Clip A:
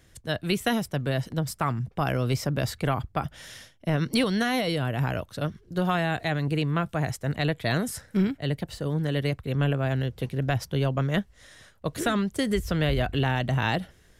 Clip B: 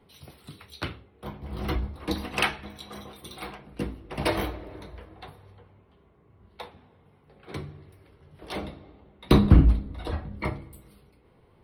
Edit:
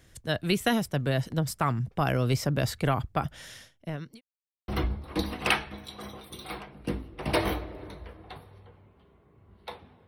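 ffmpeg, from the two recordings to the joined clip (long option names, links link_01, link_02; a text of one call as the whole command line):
ffmpeg -i cue0.wav -i cue1.wav -filter_complex "[0:a]apad=whole_dur=10.07,atrim=end=10.07,asplit=2[link_01][link_02];[link_01]atrim=end=4.21,asetpts=PTS-STARTPTS,afade=type=out:start_time=3.33:duration=0.88[link_03];[link_02]atrim=start=4.21:end=4.68,asetpts=PTS-STARTPTS,volume=0[link_04];[1:a]atrim=start=1.6:end=6.99,asetpts=PTS-STARTPTS,afade=type=in:duration=0.004:curve=hsin[link_05];[link_03][link_04][link_05]concat=n=3:v=0:a=1" out.wav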